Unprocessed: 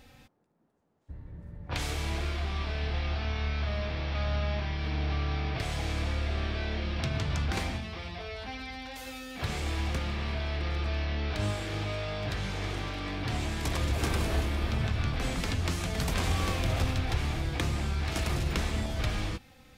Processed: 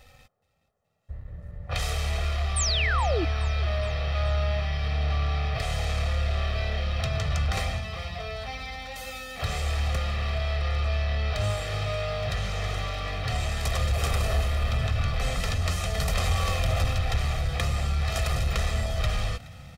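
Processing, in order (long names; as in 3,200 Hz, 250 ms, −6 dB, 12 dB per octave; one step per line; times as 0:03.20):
parametric band 200 Hz −5.5 dB 1.6 octaves
comb filter 1.6 ms, depth 79%
leveller curve on the samples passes 1
sound drawn into the spectrogram fall, 0:02.56–0:03.25, 290–9,300 Hz −26 dBFS
echo with shifted repeats 422 ms, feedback 54%, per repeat +33 Hz, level −20.5 dB
level −1.5 dB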